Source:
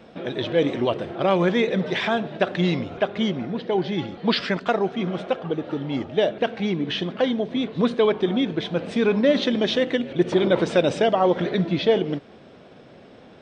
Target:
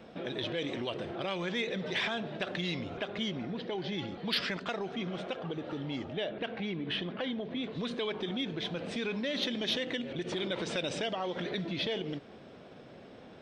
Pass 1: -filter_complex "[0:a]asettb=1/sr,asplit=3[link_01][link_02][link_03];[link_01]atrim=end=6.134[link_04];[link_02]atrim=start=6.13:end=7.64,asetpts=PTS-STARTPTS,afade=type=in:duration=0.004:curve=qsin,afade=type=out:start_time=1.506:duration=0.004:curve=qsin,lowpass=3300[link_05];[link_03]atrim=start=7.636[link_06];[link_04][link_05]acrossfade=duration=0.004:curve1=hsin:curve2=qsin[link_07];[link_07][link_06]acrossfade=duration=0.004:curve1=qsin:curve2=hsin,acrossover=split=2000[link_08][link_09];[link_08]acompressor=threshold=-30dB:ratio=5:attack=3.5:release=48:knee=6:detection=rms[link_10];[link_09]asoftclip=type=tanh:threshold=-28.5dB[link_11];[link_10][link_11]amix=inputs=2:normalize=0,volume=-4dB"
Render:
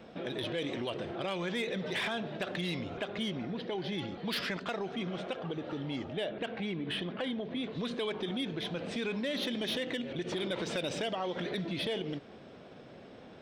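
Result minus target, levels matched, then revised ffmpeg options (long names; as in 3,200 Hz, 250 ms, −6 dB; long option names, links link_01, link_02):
soft clipping: distortion +13 dB
-filter_complex "[0:a]asettb=1/sr,asplit=3[link_01][link_02][link_03];[link_01]atrim=end=6.134[link_04];[link_02]atrim=start=6.13:end=7.64,asetpts=PTS-STARTPTS,afade=type=in:duration=0.004:curve=qsin,afade=type=out:start_time=1.506:duration=0.004:curve=qsin,lowpass=3300[link_05];[link_03]atrim=start=7.636[link_06];[link_04][link_05]acrossfade=duration=0.004:curve1=hsin:curve2=qsin[link_07];[link_07][link_06]acrossfade=duration=0.004:curve1=qsin:curve2=hsin,acrossover=split=2000[link_08][link_09];[link_08]acompressor=threshold=-30dB:ratio=5:attack=3.5:release=48:knee=6:detection=rms[link_10];[link_09]asoftclip=type=tanh:threshold=-17dB[link_11];[link_10][link_11]amix=inputs=2:normalize=0,volume=-4dB"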